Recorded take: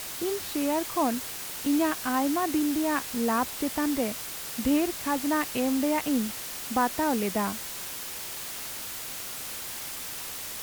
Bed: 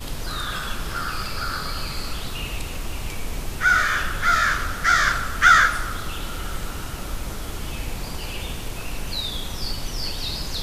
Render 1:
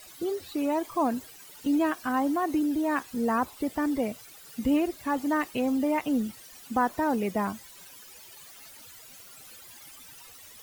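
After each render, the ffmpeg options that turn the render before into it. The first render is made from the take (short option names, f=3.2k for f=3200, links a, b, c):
-af "afftdn=nr=16:nf=-37"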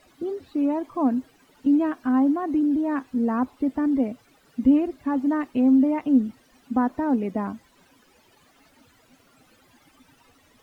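-af "lowpass=f=1.2k:p=1,equalizer=f=260:w=4.1:g=11"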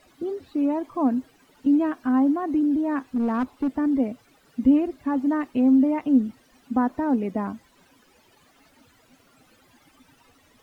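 -filter_complex "[0:a]asettb=1/sr,asplit=3[a][b][c];[a]atrim=end=3.124[d];[b]atrim=start=3.12:end=3.77,asetpts=PTS-STARTPTS,afade=t=in:d=0.004:c=qsin,afade=t=out:st=0.646:d=0.004:c=qsin,asoftclip=type=hard:threshold=-19dB[e];[c]atrim=start=3.766[f];[d][e]acrossfade=d=0.004:c1=hsin:c2=qsin[g];[g][f]acrossfade=d=0.004:c1=qsin:c2=hsin"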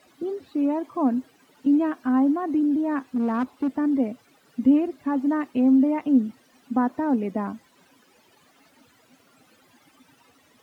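-af "highpass=120"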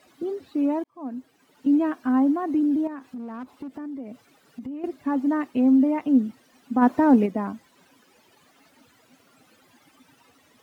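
-filter_complex "[0:a]asettb=1/sr,asplit=3[a][b][c];[a]atrim=end=2.874[d];[b]atrim=start=2.87:end=4.84,asetpts=PTS-STARTPTS,afade=t=in:d=0.004:c=qsin,afade=t=out:st=1.966:d=0.004:c=qsin,acompressor=threshold=-33dB:ratio=6:attack=3.2:release=140:knee=1:detection=peak[e];[c]atrim=start=4.836[f];[d][e]acrossfade=d=0.004:c1=hsin:c2=qsin[g];[g][f]acrossfade=d=0.004:c1=qsin:c2=hsin,asplit=3[h][i][j];[h]afade=t=out:st=6.81:d=0.02[k];[i]acontrast=74,afade=t=in:st=6.81:d=0.02,afade=t=out:st=7.25:d=0.02[l];[j]afade=t=in:st=7.25:d=0.02[m];[k][l][m]amix=inputs=3:normalize=0,asplit=2[n][o];[n]atrim=end=0.84,asetpts=PTS-STARTPTS,afade=t=out:st=0.836:d=0.004:c=hsin[p];[o]atrim=start=0.84,asetpts=PTS-STARTPTS,afade=t=in:d=0.91[q];[p][q]concat=n=2:v=0:a=1"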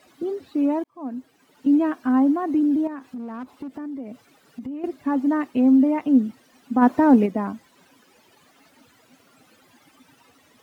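-af "volume=2dB"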